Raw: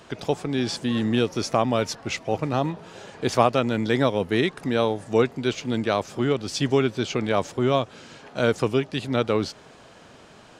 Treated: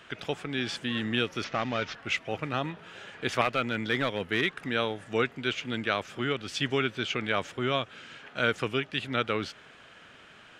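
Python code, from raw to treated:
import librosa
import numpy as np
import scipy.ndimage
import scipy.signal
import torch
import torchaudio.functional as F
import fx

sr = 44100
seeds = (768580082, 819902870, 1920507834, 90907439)

y = fx.cvsd(x, sr, bps=32000, at=(1.44, 1.95))
y = fx.clip_hard(y, sr, threshold_db=-14.0, at=(3.41, 4.64))
y = fx.band_shelf(y, sr, hz=2100.0, db=10.5, octaves=1.7)
y = F.gain(torch.from_numpy(y), -8.5).numpy()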